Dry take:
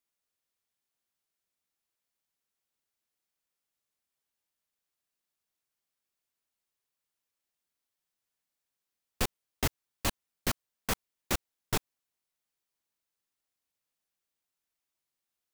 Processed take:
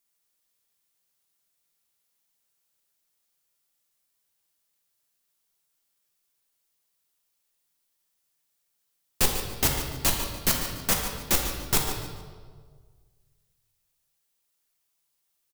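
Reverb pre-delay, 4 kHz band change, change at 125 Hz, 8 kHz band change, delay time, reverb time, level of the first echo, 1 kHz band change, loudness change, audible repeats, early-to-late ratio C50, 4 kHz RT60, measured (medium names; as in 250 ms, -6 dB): 5 ms, +9.0 dB, +6.0 dB, +11.0 dB, 145 ms, 1.7 s, -10.5 dB, +6.0 dB, +9.0 dB, 1, 3.5 dB, 1.1 s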